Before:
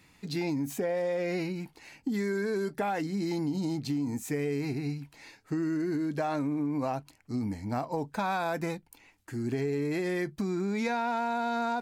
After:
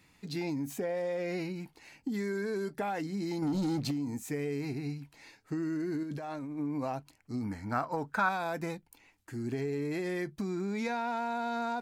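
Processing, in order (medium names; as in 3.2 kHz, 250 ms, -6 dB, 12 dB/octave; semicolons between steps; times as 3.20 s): 3.42–3.91 s: waveshaping leveller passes 2; 6.03–6.59 s: compressor with a negative ratio -35 dBFS, ratio -1; 7.44–8.29 s: peaking EQ 1.4 kHz +14.5 dB 0.74 oct; trim -3.5 dB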